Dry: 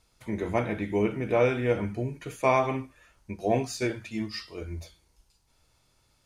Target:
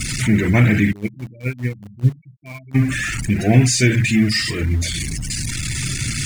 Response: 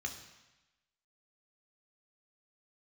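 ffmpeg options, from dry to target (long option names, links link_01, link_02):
-filter_complex "[0:a]aeval=exprs='val(0)+0.5*0.0422*sgn(val(0))':channel_layout=same,equalizer=frequency=125:width_type=o:width=1:gain=12,equalizer=frequency=250:width_type=o:width=1:gain=6,equalizer=frequency=500:width_type=o:width=1:gain=-7,equalizer=frequency=1000:width_type=o:width=1:gain=-6,equalizer=frequency=2000:width_type=o:width=1:gain=9,equalizer=frequency=8000:width_type=o:width=1:gain=8,asplit=3[link_01][link_02][link_03];[link_01]afade=type=out:start_time=0.91:duration=0.02[link_04];[link_02]agate=range=-23dB:threshold=-14dB:ratio=16:detection=peak,afade=type=in:start_time=0.91:duration=0.02,afade=type=out:start_time=2.74:duration=0.02[link_05];[link_03]afade=type=in:start_time=2.74:duration=0.02[link_06];[link_04][link_05][link_06]amix=inputs=3:normalize=0,afftfilt=real='re*gte(hypot(re,im),0.0251)':imag='im*gte(hypot(re,im),0.0251)':win_size=1024:overlap=0.75,asplit=2[link_07][link_08];[link_08]acrusher=bits=5:mix=0:aa=0.000001,volume=-10dB[link_09];[link_07][link_09]amix=inputs=2:normalize=0,volume=3.5dB"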